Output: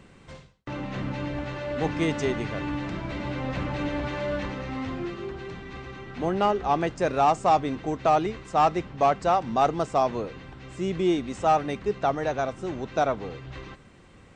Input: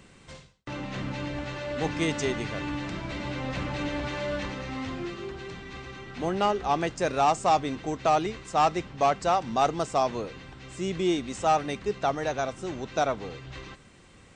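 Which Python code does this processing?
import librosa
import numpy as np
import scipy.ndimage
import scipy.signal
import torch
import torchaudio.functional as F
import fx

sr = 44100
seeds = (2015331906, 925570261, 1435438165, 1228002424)

y = fx.high_shelf(x, sr, hz=3100.0, db=-9.5)
y = y * librosa.db_to_amplitude(2.5)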